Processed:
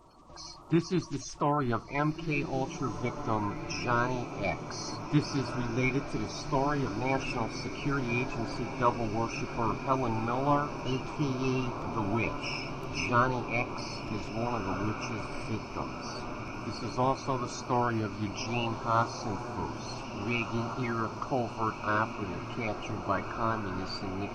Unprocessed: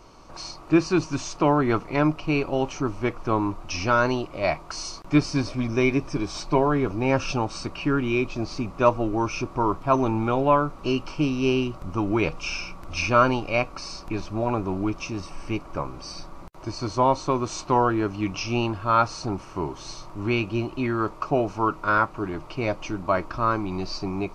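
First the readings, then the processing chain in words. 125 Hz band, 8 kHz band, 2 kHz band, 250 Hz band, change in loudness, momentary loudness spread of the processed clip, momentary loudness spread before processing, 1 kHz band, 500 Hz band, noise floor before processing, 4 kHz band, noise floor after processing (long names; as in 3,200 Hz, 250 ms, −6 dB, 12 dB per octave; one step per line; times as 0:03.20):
−5.0 dB, −6.0 dB, −5.5 dB, −7.5 dB, −7.0 dB, 8 LU, 11 LU, −6.0 dB, −8.5 dB, −43 dBFS, −6.0 dB, −41 dBFS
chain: spectral magnitudes quantised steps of 30 dB
parametric band 460 Hz −3.5 dB 0.45 octaves
tuned comb filter 57 Hz, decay 0.23 s, mix 30%
on a send: feedback delay with all-pass diffusion 1,686 ms, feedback 70%, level −9 dB
on the sum: level −5 dB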